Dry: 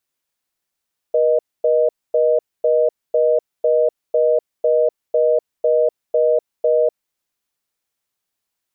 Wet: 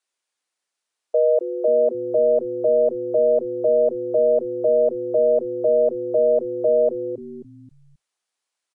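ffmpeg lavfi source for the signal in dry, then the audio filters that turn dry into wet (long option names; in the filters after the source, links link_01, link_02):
-f lavfi -i "aevalsrc='0.178*(sin(2*PI*480*t)+sin(2*PI*620*t))*clip(min(mod(t,0.5),0.25-mod(t,0.5))/0.005,0,1)':duration=5.91:sample_rate=44100"
-filter_complex "[0:a]highpass=410,asplit=2[link_01][link_02];[link_02]asplit=4[link_03][link_04][link_05][link_06];[link_03]adelay=267,afreqshift=-120,volume=-10.5dB[link_07];[link_04]adelay=534,afreqshift=-240,volume=-19.1dB[link_08];[link_05]adelay=801,afreqshift=-360,volume=-27.8dB[link_09];[link_06]adelay=1068,afreqshift=-480,volume=-36.4dB[link_10];[link_07][link_08][link_09][link_10]amix=inputs=4:normalize=0[link_11];[link_01][link_11]amix=inputs=2:normalize=0" -ar 22050 -c:a aac -b:a 64k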